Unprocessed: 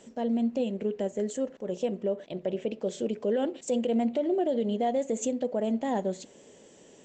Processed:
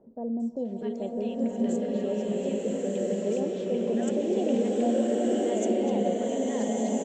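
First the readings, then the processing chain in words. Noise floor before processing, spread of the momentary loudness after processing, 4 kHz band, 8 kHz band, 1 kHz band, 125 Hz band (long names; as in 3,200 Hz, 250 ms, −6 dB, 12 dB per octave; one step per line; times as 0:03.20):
−55 dBFS, 6 LU, +1.0 dB, +1.0 dB, −0.5 dB, +3.5 dB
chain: three-band delay without the direct sound lows, highs, mids 400/650 ms, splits 890/4,700 Hz
slow-attack reverb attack 1,330 ms, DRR −5 dB
level −3 dB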